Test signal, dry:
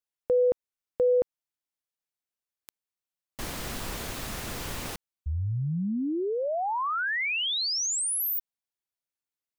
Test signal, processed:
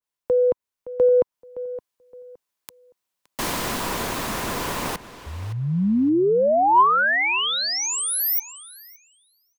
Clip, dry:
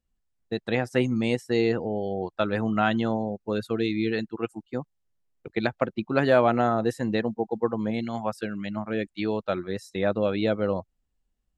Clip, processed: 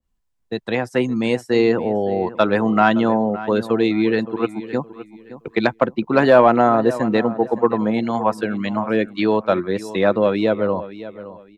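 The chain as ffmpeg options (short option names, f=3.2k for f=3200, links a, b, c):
-filter_complex "[0:a]equalizer=f=1k:w=6.7:g=7,acrossover=split=160[a][b];[a]alimiter=level_in=13.5dB:limit=-24dB:level=0:latency=1,volume=-13.5dB[c];[b]dynaudnorm=f=270:g=11:m=6.5dB[d];[c][d]amix=inputs=2:normalize=0,asoftclip=type=tanh:threshold=-4.5dB,asplit=2[e][f];[f]adelay=567,lowpass=f=3.4k:p=1,volume=-15dB,asplit=2[g][h];[h]adelay=567,lowpass=f=3.4k:p=1,volume=0.26,asplit=2[i][j];[j]adelay=567,lowpass=f=3.4k:p=1,volume=0.26[k];[g][i][k]amix=inputs=3:normalize=0[l];[e][l]amix=inputs=2:normalize=0,adynamicequalizer=threshold=0.0141:dfrequency=2100:dqfactor=0.7:tfrequency=2100:tqfactor=0.7:attack=5:release=100:ratio=0.375:range=3.5:mode=cutabove:tftype=highshelf,volume=4dB"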